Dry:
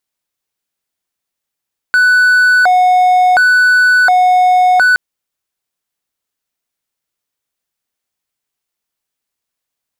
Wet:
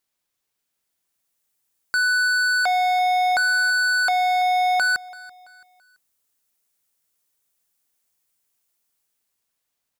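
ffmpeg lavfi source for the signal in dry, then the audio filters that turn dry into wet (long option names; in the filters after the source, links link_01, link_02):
-f lavfi -i "aevalsrc='0.631*(1-4*abs(mod((1110.5*t+379.5/0.7*(0.5-abs(mod(0.7*t,1)-0.5)))+0.25,1)-0.5))':duration=3.02:sample_rate=44100"
-filter_complex "[0:a]acrossover=split=6500[link_01][link_02];[link_02]dynaudnorm=framelen=260:gausssize=9:maxgain=8.5dB[link_03];[link_01][link_03]amix=inputs=2:normalize=0,asoftclip=type=hard:threshold=-19dB,aecho=1:1:334|668|1002:0.0891|0.033|0.0122"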